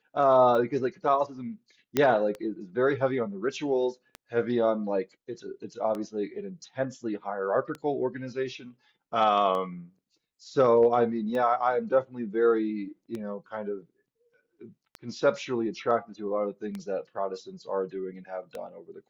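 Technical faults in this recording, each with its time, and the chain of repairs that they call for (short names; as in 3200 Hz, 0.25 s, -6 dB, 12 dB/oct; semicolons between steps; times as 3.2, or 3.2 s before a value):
tick 33 1/3 rpm -22 dBFS
1.97 pop -10 dBFS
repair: de-click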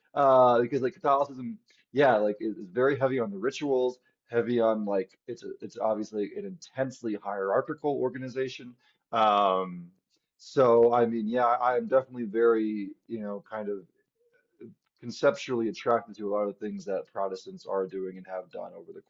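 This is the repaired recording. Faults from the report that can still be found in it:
none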